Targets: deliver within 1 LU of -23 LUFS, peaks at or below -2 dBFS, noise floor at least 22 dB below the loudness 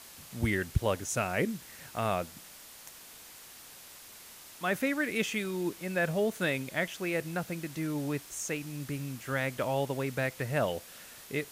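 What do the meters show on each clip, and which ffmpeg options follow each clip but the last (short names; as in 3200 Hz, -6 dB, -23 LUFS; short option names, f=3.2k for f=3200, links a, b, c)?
noise floor -51 dBFS; noise floor target -55 dBFS; loudness -32.5 LUFS; peak -13.5 dBFS; loudness target -23.0 LUFS
-> -af "afftdn=nr=6:nf=-51"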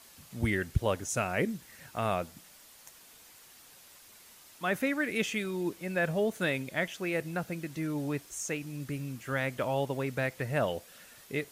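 noise floor -56 dBFS; loudness -33.0 LUFS; peak -14.0 dBFS; loudness target -23.0 LUFS
-> -af "volume=10dB"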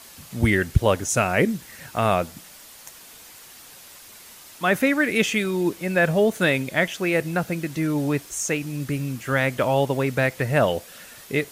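loudness -23.0 LUFS; peak -4.0 dBFS; noise floor -46 dBFS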